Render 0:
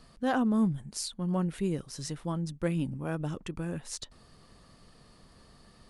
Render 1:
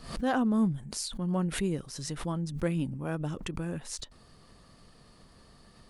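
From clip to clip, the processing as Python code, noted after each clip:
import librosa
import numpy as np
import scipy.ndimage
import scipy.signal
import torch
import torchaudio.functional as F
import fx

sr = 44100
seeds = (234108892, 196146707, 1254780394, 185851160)

y = fx.pre_swell(x, sr, db_per_s=92.0)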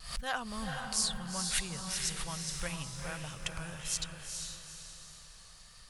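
y = fx.tone_stack(x, sr, knobs='10-0-10')
y = fx.vibrato(y, sr, rate_hz=1.6, depth_cents=31.0)
y = fx.echo_diffused(y, sr, ms=451, feedback_pct=45, wet_db=-4)
y = F.gain(torch.from_numpy(y), 5.5).numpy()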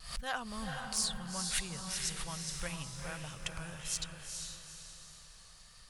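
y = 10.0 ** (-19.0 / 20.0) * (np.abs((x / 10.0 ** (-19.0 / 20.0) + 3.0) % 4.0 - 2.0) - 1.0)
y = F.gain(torch.from_numpy(y), -2.0).numpy()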